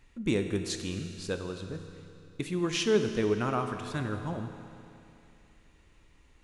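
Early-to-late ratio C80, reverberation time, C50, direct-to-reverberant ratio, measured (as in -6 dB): 8.0 dB, 2.8 s, 7.5 dB, 6.5 dB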